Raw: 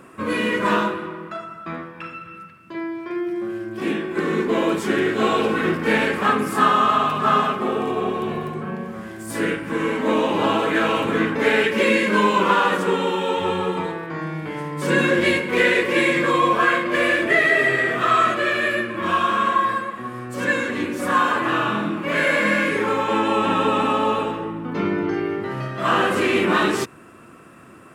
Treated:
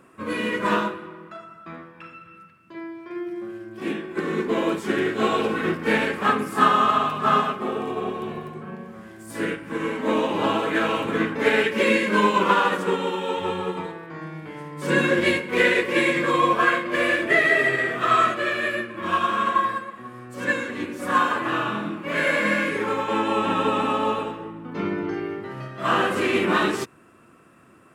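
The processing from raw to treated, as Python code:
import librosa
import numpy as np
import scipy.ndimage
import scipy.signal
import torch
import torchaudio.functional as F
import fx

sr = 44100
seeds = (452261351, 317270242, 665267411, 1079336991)

y = fx.upward_expand(x, sr, threshold_db=-29.0, expansion=1.5)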